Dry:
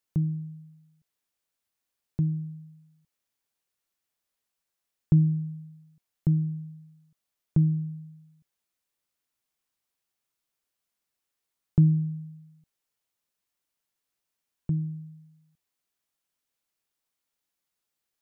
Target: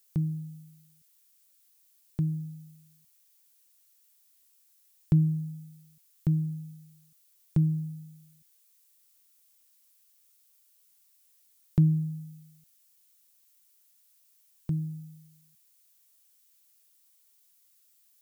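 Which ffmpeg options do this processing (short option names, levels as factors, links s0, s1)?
-af "crystalizer=i=8.5:c=0,volume=0.75"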